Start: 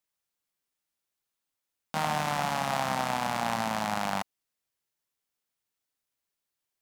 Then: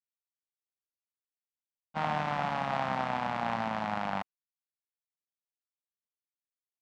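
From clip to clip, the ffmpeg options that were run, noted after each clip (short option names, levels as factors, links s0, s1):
-af "agate=range=0.0224:threshold=0.0398:ratio=3:detection=peak,lowpass=2800,volume=0.841"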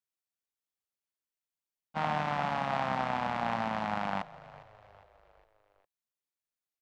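-filter_complex "[0:a]asplit=5[s0][s1][s2][s3][s4];[s1]adelay=407,afreqshift=-48,volume=0.112[s5];[s2]adelay=814,afreqshift=-96,volume=0.0575[s6];[s3]adelay=1221,afreqshift=-144,volume=0.0292[s7];[s4]adelay=1628,afreqshift=-192,volume=0.015[s8];[s0][s5][s6][s7][s8]amix=inputs=5:normalize=0"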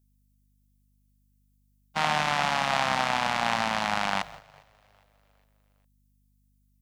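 -af "crystalizer=i=9:c=0,aeval=exprs='val(0)+0.00158*(sin(2*PI*50*n/s)+sin(2*PI*2*50*n/s)/2+sin(2*PI*3*50*n/s)/3+sin(2*PI*4*50*n/s)/4+sin(2*PI*5*50*n/s)/5)':c=same,agate=range=0.282:threshold=0.00708:ratio=16:detection=peak,volume=1.12"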